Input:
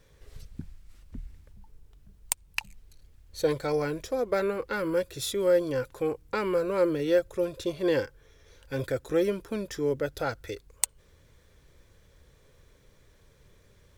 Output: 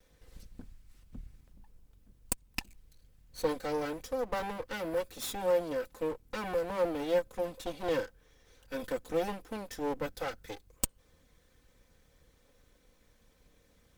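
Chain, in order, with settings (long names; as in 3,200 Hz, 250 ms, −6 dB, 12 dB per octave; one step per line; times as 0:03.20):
lower of the sound and its delayed copy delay 3.9 ms
high-shelf EQ 12,000 Hz +5 dB
level −4.5 dB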